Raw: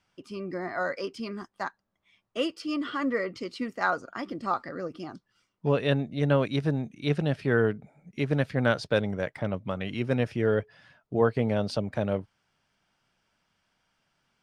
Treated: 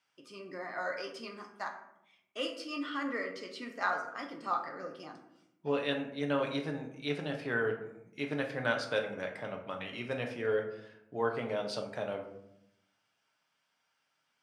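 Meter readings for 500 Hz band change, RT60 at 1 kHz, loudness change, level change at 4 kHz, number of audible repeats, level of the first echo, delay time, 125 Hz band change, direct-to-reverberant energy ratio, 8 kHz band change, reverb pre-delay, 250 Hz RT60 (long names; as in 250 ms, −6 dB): −6.5 dB, 0.70 s, −7.0 dB, −3.0 dB, no echo audible, no echo audible, no echo audible, −15.5 dB, 2.0 dB, can't be measured, 7 ms, 1.2 s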